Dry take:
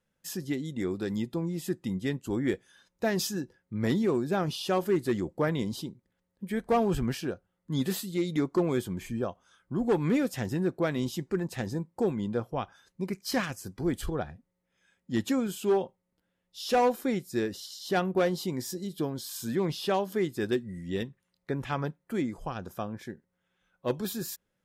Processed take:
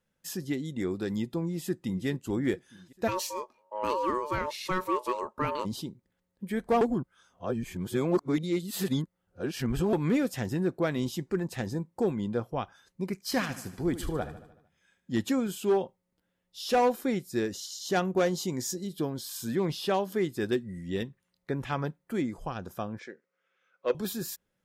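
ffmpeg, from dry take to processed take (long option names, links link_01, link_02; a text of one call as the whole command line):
ffmpeg -i in.wav -filter_complex "[0:a]asplit=2[link_01][link_02];[link_02]afade=type=in:start_time=1.45:duration=0.01,afade=type=out:start_time=2.06:duration=0.01,aecho=0:1:430|860|1290|1720:0.158489|0.0792447|0.0396223|0.0198112[link_03];[link_01][link_03]amix=inputs=2:normalize=0,asplit=3[link_04][link_05][link_06];[link_04]afade=type=out:start_time=3.07:duration=0.02[link_07];[link_05]aeval=exprs='val(0)*sin(2*PI*740*n/s)':channel_layout=same,afade=type=in:start_time=3.07:duration=0.02,afade=type=out:start_time=5.64:duration=0.02[link_08];[link_06]afade=type=in:start_time=5.64:duration=0.02[link_09];[link_07][link_08][link_09]amix=inputs=3:normalize=0,asettb=1/sr,asplit=3[link_10][link_11][link_12];[link_10]atrim=end=13.244[link_13];[link_11]atrim=start=13.24:end=15.16,asetpts=PTS-STARTPTS,afade=type=in:duration=0.004:curve=qsin,afade=type=out:start_time=1.916:duration=0.004:curve=qsin,aecho=1:1:75|150|225|300|375|450:0.211|0.12|0.0687|0.0391|0.0223|0.0127,atrim=end_sample=84672[link_14];[link_12]atrim=start=15.156[link_15];[link_13][link_14]acrossfade=duration=0.004:curve1=hsin:curve2=qsin[link_16];[link_16][link_15]acrossfade=duration=0.004:curve1=qsin:curve2=hsin,asettb=1/sr,asplit=3[link_17][link_18][link_19];[link_17]atrim=end=17.444[link_20];[link_18]atrim=start=17.44:end=18.76,asetpts=PTS-STARTPTS,afade=type=in:duration=0.004:curve=qsin,afade=type=out:start_time=1.316:duration=0.004:curve=qsin,equalizer=frequency=6600:width_type=o:width=0.37:gain=9.5[link_21];[link_19]atrim=start=18.756[link_22];[link_20][link_21]acrossfade=duration=0.004:curve1=hsin:curve2=qsin[link_23];[link_23][link_22]acrossfade=duration=0.004:curve1=qsin:curve2=hsin,asettb=1/sr,asplit=3[link_24][link_25][link_26];[link_24]atrim=end=22.994[link_27];[link_25]atrim=start=22.99:end=23.95,asetpts=PTS-STARTPTS,afade=type=in:duration=0.004:curve=qsin,afade=type=out:start_time=0.956:duration=0.004:curve=qsin,highpass=420,equalizer=frequency=480:width_type=q:width=4:gain=7,equalizer=frequency=850:width_type=q:width=4:gain=-7,equalizer=frequency=1300:width_type=q:width=4:gain=7,equalizer=frequency=2300:width_type=q:width=4:gain=6,equalizer=frequency=3600:width_type=q:width=4:gain=-3,lowpass=frequency=6600:width=0.5412,lowpass=frequency=6600:width=1.3066[link_28];[link_26]atrim=start=23.946[link_29];[link_27][link_28]acrossfade=duration=0.004:curve1=hsin:curve2=qsin[link_30];[link_30][link_29]acrossfade=duration=0.004:curve1=qsin:curve2=hsin,asplit=3[link_31][link_32][link_33];[link_31]atrim=end=6.812[link_34];[link_32]atrim=start=6.808:end=9.932,asetpts=PTS-STARTPTS,areverse[link_35];[link_33]atrim=start=9.928[link_36];[link_34][link_35]acrossfade=duration=0.004:curve1=hsin:curve2=hsin[link_37];[link_37][link_36]acrossfade=duration=0.004:curve1=hsin:curve2=hsin" out.wav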